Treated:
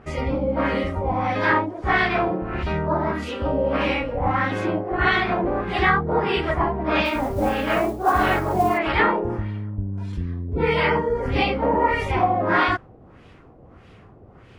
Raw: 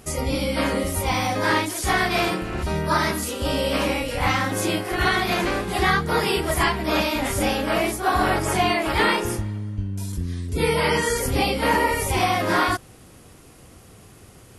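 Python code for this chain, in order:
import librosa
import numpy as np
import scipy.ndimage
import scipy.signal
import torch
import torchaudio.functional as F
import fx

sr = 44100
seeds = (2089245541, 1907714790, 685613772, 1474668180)

y = fx.filter_lfo_lowpass(x, sr, shape='sine', hz=1.6, low_hz=660.0, high_hz=2900.0, q=1.4)
y = fx.mod_noise(y, sr, seeds[0], snr_db=26, at=(7.04, 8.77), fade=0.02)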